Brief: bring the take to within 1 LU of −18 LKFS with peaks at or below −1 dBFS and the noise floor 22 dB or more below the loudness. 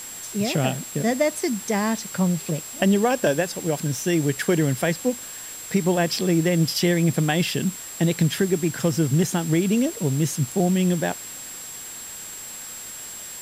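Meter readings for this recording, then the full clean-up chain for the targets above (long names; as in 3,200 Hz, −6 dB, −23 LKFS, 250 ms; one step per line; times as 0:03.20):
interfering tone 7,600 Hz; level of the tone −36 dBFS; background noise floor −37 dBFS; target noise floor −45 dBFS; integrated loudness −22.5 LKFS; sample peak −8.5 dBFS; target loudness −18.0 LKFS
→ notch filter 7,600 Hz, Q 30
broadband denoise 8 dB, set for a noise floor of −37 dBFS
level +4.5 dB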